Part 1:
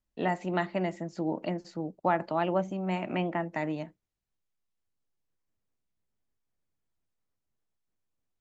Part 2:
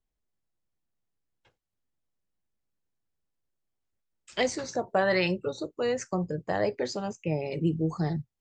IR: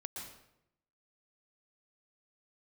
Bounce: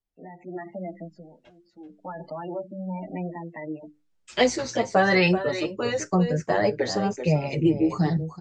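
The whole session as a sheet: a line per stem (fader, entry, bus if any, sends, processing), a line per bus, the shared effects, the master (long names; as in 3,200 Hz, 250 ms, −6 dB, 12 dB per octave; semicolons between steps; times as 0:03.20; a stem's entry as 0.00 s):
−8.0 dB, 0.00 s, no send, no echo send, brickwall limiter −24 dBFS, peak gain reduction 10.5 dB; mains-hum notches 50/100/150/200/250/300/350/400/450 Hz; gate on every frequency bin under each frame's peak −15 dB strong; automatic ducking −21 dB, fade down 0.45 s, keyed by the second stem
−1.5 dB, 0.00 s, no send, echo send −11.5 dB, no processing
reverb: not used
echo: single-tap delay 383 ms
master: low-pass filter 7,800 Hz 12 dB per octave; automatic gain control gain up to 11 dB; barber-pole flanger 7.2 ms −1 Hz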